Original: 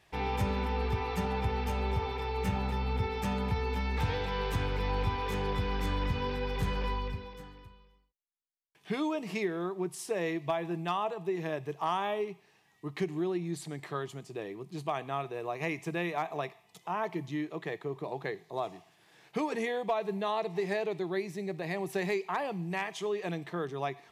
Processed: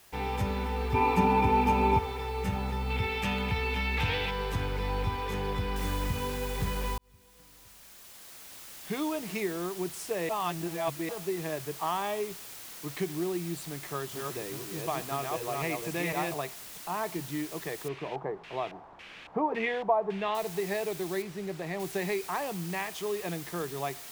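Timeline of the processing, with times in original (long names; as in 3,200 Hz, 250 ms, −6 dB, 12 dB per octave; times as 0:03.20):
0:00.94–0:01.99: hollow resonant body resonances 290/900/2,400 Hz, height 15 dB, ringing for 20 ms
0:02.90–0:04.31: parametric band 2,700 Hz +11.5 dB 1.1 octaves
0:05.76: noise floor change −58 dB −45 dB
0:06.98–0:09.08: fade in
0:10.29–0:11.09: reverse
0:13.86–0:16.34: delay that plays each chunk backwards 252 ms, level −2 dB
0:17.88–0:20.35: auto-filter low-pass square 1.8 Hz 900–2,600 Hz
0:21.22–0:21.80: low-pass filter 2,800 Hz 6 dB per octave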